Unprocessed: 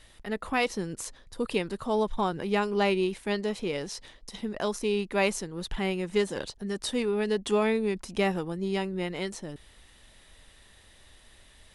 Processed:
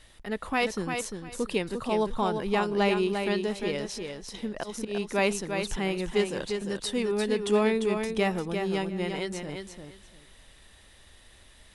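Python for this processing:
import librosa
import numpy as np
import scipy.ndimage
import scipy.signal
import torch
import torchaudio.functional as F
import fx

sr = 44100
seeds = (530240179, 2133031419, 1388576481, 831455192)

y = fx.auto_swell(x, sr, attack_ms=155.0, at=(4.52, 5.05), fade=0.02)
y = fx.echo_feedback(y, sr, ms=348, feedback_pct=19, wet_db=-6.0)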